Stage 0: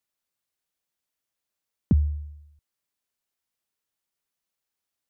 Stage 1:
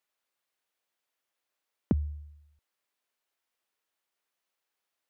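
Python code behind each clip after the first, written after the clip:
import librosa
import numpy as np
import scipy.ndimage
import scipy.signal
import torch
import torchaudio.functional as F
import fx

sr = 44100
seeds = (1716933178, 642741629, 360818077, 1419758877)

y = fx.bass_treble(x, sr, bass_db=-14, treble_db=-7)
y = y * 10.0 ** (4.5 / 20.0)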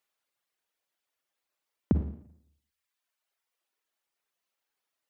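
y = fx.dereverb_blind(x, sr, rt60_s=1.3)
y = fx.rev_schroeder(y, sr, rt60_s=0.67, comb_ms=38, drr_db=7.5)
y = y * 10.0 ** (1.5 / 20.0)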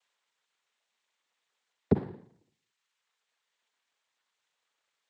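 y = fx.noise_vocoder(x, sr, seeds[0], bands=6)
y = y * 10.0 ** (2.5 / 20.0)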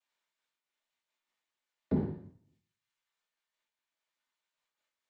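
y = fx.room_shoebox(x, sr, seeds[1], volume_m3=270.0, walls='furnished', distance_m=2.6)
y = fx.am_noise(y, sr, seeds[2], hz=5.7, depth_pct=55)
y = y * 10.0 ** (-9.0 / 20.0)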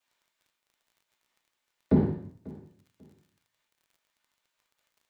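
y = fx.dmg_crackle(x, sr, seeds[3], per_s=36.0, level_db=-61.0)
y = fx.echo_feedback(y, sr, ms=542, feedback_pct=23, wet_db=-21)
y = y * 10.0 ** (8.0 / 20.0)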